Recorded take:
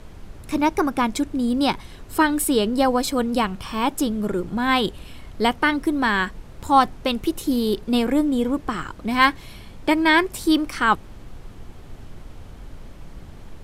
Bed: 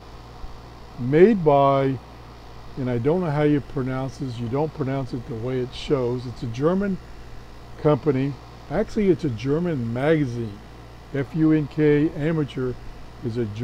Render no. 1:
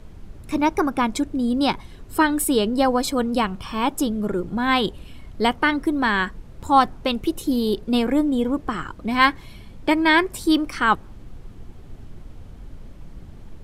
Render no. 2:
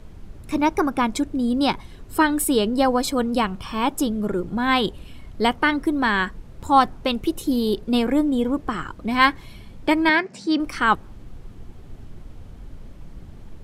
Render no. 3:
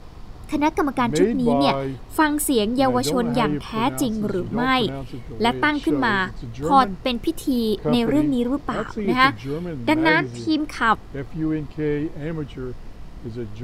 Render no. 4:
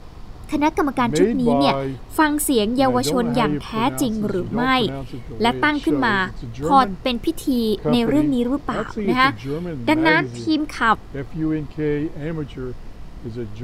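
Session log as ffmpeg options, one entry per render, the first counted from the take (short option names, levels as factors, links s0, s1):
-af "afftdn=nr=6:nf=-42"
-filter_complex "[0:a]asettb=1/sr,asplit=3[s0][s1][s2];[s0]atrim=end=10.094[s3];[s1]atrim=start=10.09:end=10.6,asetpts=PTS-STARTPTS,afade=t=in:d=0.004:c=qsin,afade=t=out:st=0.506:d=0.004:c=qsin,highpass=f=150:w=0.5412,highpass=f=150:w=1.3066,equalizer=f=200:t=q:w=4:g=8,equalizer=f=360:t=q:w=4:g=-8,equalizer=f=1100:t=q:w=4:g=-9,equalizer=f=3400:t=q:w=4:g=-8,lowpass=f=6100:w=0.5412,lowpass=f=6100:w=1.3066[s4];[s2]atrim=start=10.596[s5];[s3][s4]acrossfade=d=0.004:c1=hsin:c2=qsin[s6];[s6][s5]acrossfade=d=0.004:c1=qsin:c2=hsin"
-filter_complex "[1:a]volume=0.531[s0];[0:a][s0]amix=inputs=2:normalize=0"
-af "volume=1.19,alimiter=limit=0.708:level=0:latency=1"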